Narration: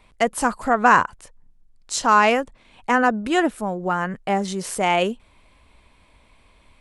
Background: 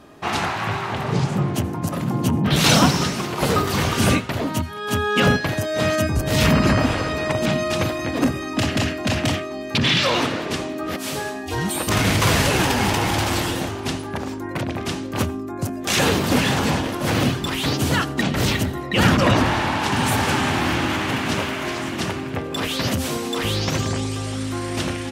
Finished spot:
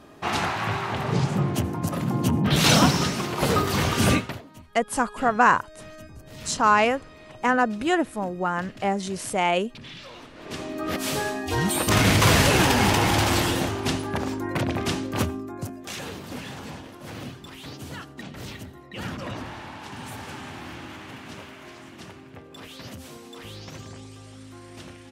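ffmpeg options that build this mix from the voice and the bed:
-filter_complex "[0:a]adelay=4550,volume=-3dB[a];[1:a]volume=21dB,afade=t=out:st=4.21:d=0.21:silence=0.0891251,afade=t=in:st=10.34:d=0.67:silence=0.0668344,afade=t=out:st=14.89:d=1.11:silence=0.133352[b];[a][b]amix=inputs=2:normalize=0"

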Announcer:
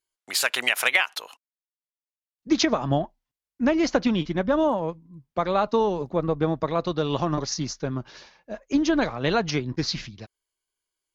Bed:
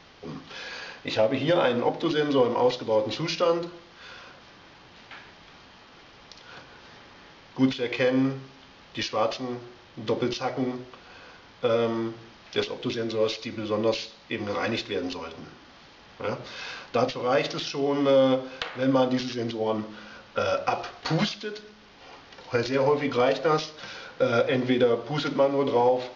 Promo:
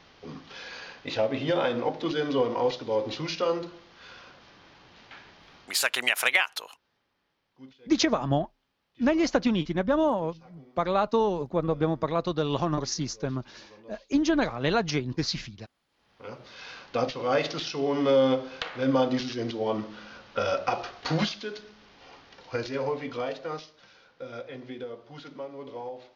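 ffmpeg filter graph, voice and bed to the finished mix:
-filter_complex "[0:a]adelay=5400,volume=-2dB[a];[1:a]volume=21.5dB,afade=t=out:st=5.56:d=0.5:silence=0.0707946,afade=t=in:st=15.88:d=1.41:silence=0.0562341,afade=t=out:st=21.45:d=2.44:silence=0.177828[b];[a][b]amix=inputs=2:normalize=0"

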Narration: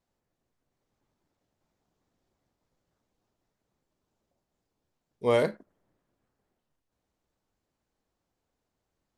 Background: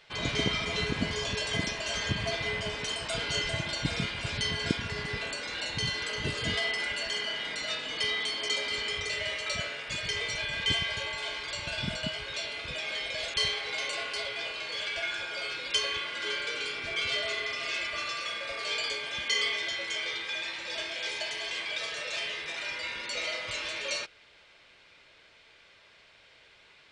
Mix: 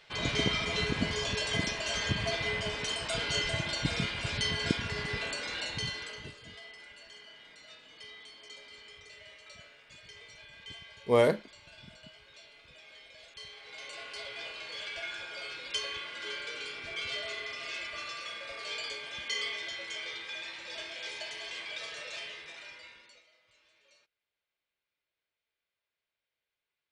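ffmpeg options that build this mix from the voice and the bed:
-filter_complex "[0:a]adelay=5850,volume=0.5dB[a];[1:a]volume=12.5dB,afade=t=out:st=5.49:d=0.89:silence=0.11885,afade=t=in:st=13.48:d=0.93:silence=0.223872,afade=t=out:st=22.01:d=1.23:silence=0.0473151[b];[a][b]amix=inputs=2:normalize=0"

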